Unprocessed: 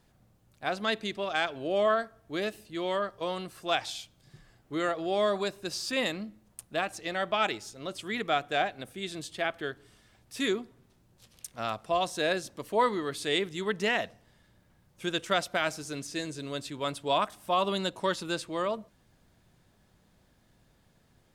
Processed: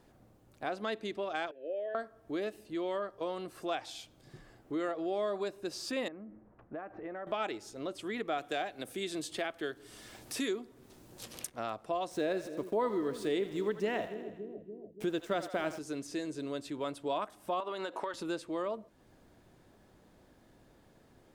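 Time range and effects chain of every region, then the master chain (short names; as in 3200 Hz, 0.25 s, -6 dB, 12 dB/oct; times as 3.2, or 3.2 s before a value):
1.51–1.95 vowel filter e + notch 1300 Hz, Q 5.3
6.08–7.27 LPF 1800 Hz 24 dB/oct + compressor 2.5:1, threshold -46 dBFS
8.38–11.5 high shelf 2900 Hz +9.5 dB + three-band squash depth 40%
12.11–15.79 low shelf 470 Hz +7.5 dB + sample gate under -42.5 dBFS + split-band echo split 480 Hz, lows 0.286 s, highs 81 ms, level -13.5 dB
17.6–18.14 HPF 250 Hz + bell 1300 Hz +12 dB 2.6 oct + compressor 8:1, threshold -29 dBFS
whole clip: EQ curve 180 Hz 0 dB, 300 Hz +9 dB, 3500 Hz -1 dB; compressor 2:1, threshold -41 dBFS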